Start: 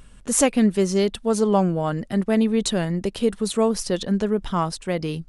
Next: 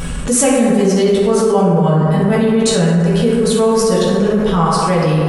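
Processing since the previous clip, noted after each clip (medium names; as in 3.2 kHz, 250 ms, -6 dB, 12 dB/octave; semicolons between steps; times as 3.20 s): reverberation RT60 2.2 s, pre-delay 3 ms, DRR -7.5 dB; level flattener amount 70%; trim -4 dB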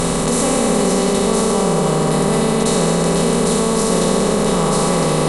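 spectral levelling over time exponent 0.2; trim -10.5 dB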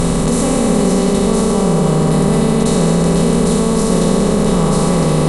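bass shelf 270 Hz +10.5 dB; trim -2 dB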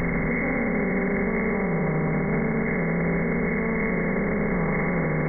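knee-point frequency compression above 1.3 kHz 4:1; peak limiter -11.5 dBFS, peak gain reduction 10.5 dB; trim -5 dB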